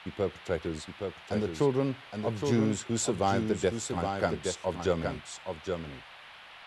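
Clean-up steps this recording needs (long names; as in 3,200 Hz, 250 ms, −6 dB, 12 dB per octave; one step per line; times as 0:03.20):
noise reduction from a noise print 25 dB
echo removal 818 ms −5.5 dB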